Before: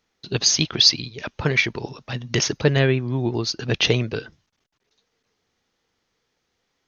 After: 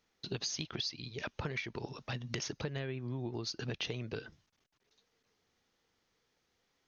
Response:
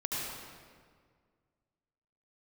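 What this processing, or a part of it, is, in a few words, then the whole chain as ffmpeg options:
serial compression, leveller first: -af "acompressor=threshold=-22dB:ratio=2.5,acompressor=threshold=-32dB:ratio=4,volume=-4.5dB"

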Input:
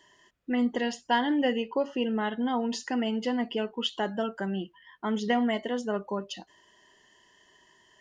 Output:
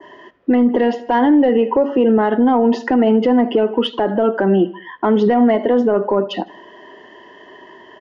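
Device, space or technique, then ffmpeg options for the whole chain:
mastering chain: -filter_complex "[0:a]aecho=1:1:78|156|234:0.075|0.036|0.0173,adynamicequalizer=threshold=0.00355:dfrequency=3600:dqfactor=0.93:tfrequency=3600:tqfactor=0.93:attack=5:release=100:ratio=0.375:range=2:mode=cutabove:tftype=bell,highpass=54,lowpass=f=6.3k:w=0.5412,lowpass=f=6.3k:w=1.3066,acrossover=split=290 3600:gain=0.126 1 0.141[a][b][c];[a][b][c]amix=inputs=3:normalize=0,equalizer=f=270:t=o:w=0.77:g=2.5,acompressor=threshold=-35dB:ratio=2,asoftclip=type=tanh:threshold=-24dB,tiltshelf=f=1.1k:g=8,alimiter=level_in=27.5dB:limit=-1dB:release=50:level=0:latency=1,volume=-6dB"

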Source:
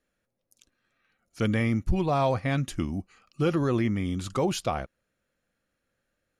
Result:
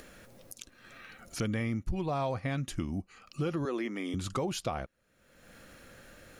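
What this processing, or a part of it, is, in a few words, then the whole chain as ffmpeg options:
upward and downward compression: -filter_complex "[0:a]asettb=1/sr,asplit=3[a][b][c];[a]atrim=end=3.654[d];[b]atrim=start=3.65:end=4.14,asetpts=PTS-STARTPTS,afade=t=in:d=0.004:c=qsin,afade=t=out:st=0.486:d=0.004:c=qsin,highpass=f=280:w=0.5412,highpass=f=280:w=1.3066[e];[c]atrim=start=4.136[f];[d][e]acrossfade=d=0.004:c1=hsin:c2=qsin[g];[g][f]acrossfade=d=0.004:c1=qsin:c2=hsin,acompressor=mode=upward:threshold=-32dB:ratio=2.5,acompressor=threshold=-31dB:ratio=3"

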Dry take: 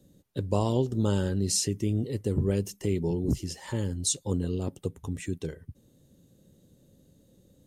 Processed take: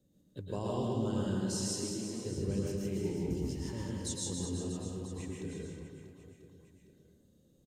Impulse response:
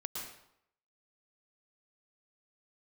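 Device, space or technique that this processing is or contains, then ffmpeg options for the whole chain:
bathroom: -filter_complex "[1:a]atrim=start_sample=2205[a];[0:a][a]afir=irnorm=-1:irlink=0,equalizer=f=11k:w=3:g=-5.5,asettb=1/sr,asplit=3[b][c][d];[b]atrim=end=1.544[e];[c]atrim=start=1.54:end=2.25,asetpts=PTS-STARTPTS,afade=t=in:d=0.004:c=qsin,afade=t=out:st=0.706:d=0.004:c=qsin,highpass=f=220:w=0.5412,highpass=f=220:w=1.3066[f];[d]atrim=start=2.246[g];[e][f]acrossfade=d=0.004:c1=hsin:c2=qsin[h];[h][g]acrossfade=d=0.004:c1=qsin:c2=hsin,aecho=1:1:160|368|638.4|989.9|1447:0.631|0.398|0.251|0.158|0.1,volume=-9dB"

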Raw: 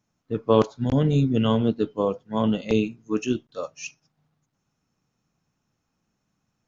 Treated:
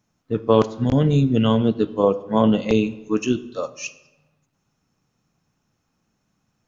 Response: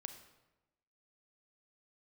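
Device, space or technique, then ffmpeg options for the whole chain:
compressed reverb return: -filter_complex "[0:a]asettb=1/sr,asplit=3[a][b][c];[a]atrim=end=2.034[d];[b]atrim=start=2.03:end=2.7,asetpts=PTS-STARTPTS,afade=t=in:d=0.004:c=qsin,afade=t=out:st=0.666:d=0.004:c=qsin,equalizer=f=520:w=0.4:g=4.5[e];[c]atrim=start=2.696[f];[d][e]acrossfade=d=0.004:c1=hsin:c2=qsin[g];[g][f]acrossfade=d=0.004:c1=qsin:c2=hsin,asplit=2[h][i];[1:a]atrim=start_sample=2205[j];[i][j]afir=irnorm=-1:irlink=0,acompressor=threshold=-24dB:ratio=6,volume=1dB[k];[h][k]amix=inputs=2:normalize=0"

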